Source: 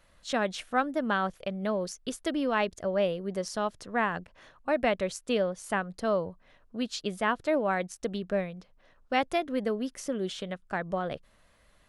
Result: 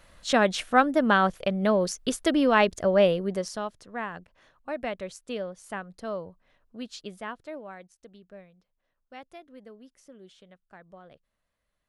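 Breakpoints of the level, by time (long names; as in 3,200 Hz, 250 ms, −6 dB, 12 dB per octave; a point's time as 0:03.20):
0:03.18 +7 dB
0:03.79 −6 dB
0:07.00 −6 dB
0:07.99 −18 dB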